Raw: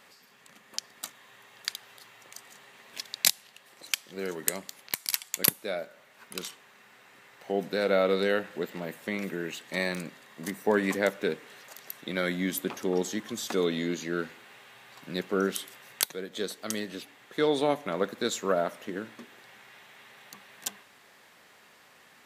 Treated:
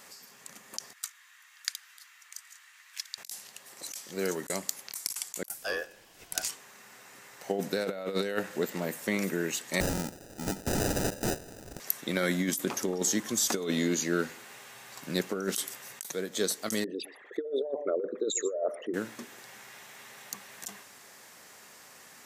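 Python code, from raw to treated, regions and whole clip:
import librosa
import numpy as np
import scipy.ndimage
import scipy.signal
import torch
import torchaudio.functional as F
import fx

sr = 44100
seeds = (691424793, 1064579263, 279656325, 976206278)

y = fx.chain(x, sr, fx.highpass(hz=1400.0, slope=24),
    fx.high_shelf(hz=2800.0, db=-10.0), at=(0.93, 3.18))
y = fx.chain(y, sr, fx.steep_highpass(hz=280.0, slope=96),
    fx.ring_mod(carrier_hz=1100.0), at=(5.47, 6.49))
y = fx.chain(y, sr, fx.sample_hold(seeds[0], rate_hz=1100.0, jitter_pct=0),
    fx.overflow_wrap(gain_db=26.5), at=(9.8, 11.8))
y = fx.chain(y, sr, fx.envelope_sharpen(power=3.0),
    fx.echo_single(ms=123, db=-20.0), at=(16.84, 18.94))
y = fx.high_shelf_res(y, sr, hz=4600.0, db=7.0, q=1.5)
y = fx.over_compress(y, sr, threshold_db=-29.0, ratio=-0.5)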